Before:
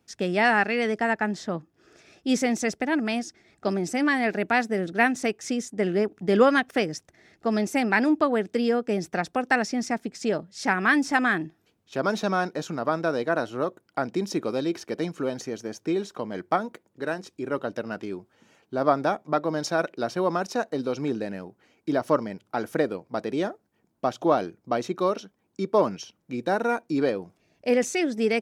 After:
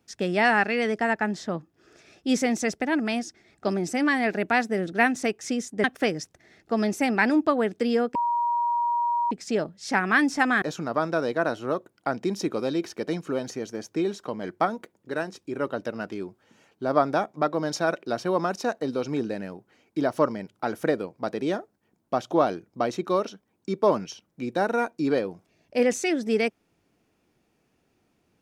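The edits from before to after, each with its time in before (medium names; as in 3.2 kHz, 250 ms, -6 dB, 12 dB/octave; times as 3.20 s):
5.84–6.58 s: delete
8.89–10.05 s: bleep 951 Hz -21.5 dBFS
11.36–12.53 s: delete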